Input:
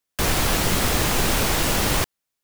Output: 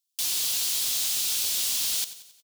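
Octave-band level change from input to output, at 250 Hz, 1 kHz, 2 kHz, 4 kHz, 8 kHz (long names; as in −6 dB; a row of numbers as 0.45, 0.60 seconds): −29.0, −23.5, −15.0, −2.0, 0.0 decibels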